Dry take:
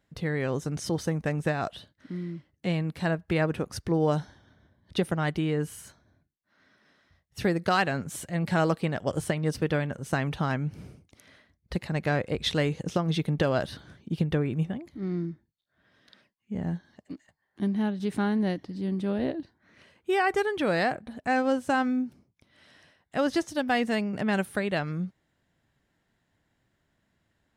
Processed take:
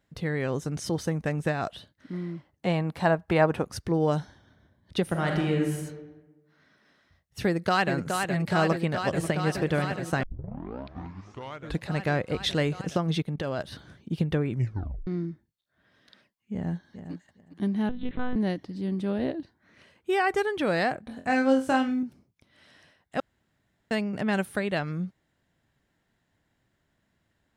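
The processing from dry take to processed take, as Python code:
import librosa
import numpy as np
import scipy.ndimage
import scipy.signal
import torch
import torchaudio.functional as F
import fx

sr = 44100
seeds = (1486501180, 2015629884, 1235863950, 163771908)

y = fx.peak_eq(x, sr, hz=840.0, db=10.0, octaves=1.3, at=(2.13, 3.62))
y = fx.reverb_throw(y, sr, start_s=5.03, length_s=0.7, rt60_s=1.2, drr_db=1.0)
y = fx.echo_throw(y, sr, start_s=7.45, length_s=0.47, ms=420, feedback_pct=85, wet_db=-5.0)
y = fx.echo_throw(y, sr, start_s=8.66, length_s=0.79, ms=540, feedback_pct=60, wet_db=-13.0)
y = fx.level_steps(y, sr, step_db=15, at=(13.22, 13.72))
y = fx.echo_throw(y, sr, start_s=16.53, length_s=0.59, ms=410, feedback_pct=15, wet_db=-10.5)
y = fx.lpc_monotone(y, sr, seeds[0], pitch_hz=250.0, order=10, at=(17.89, 18.36))
y = fx.room_flutter(y, sr, wall_m=3.9, rt60_s=0.25, at=(21.07, 22.03))
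y = fx.edit(y, sr, fx.tape_start(start_s=10.23, length_s=1.69),
    fx.tape_stop(start_s=14.5, length_s=0.57),
    fx.room_tone_fill(start_s=23.2, length_s=0.71), tone=tone)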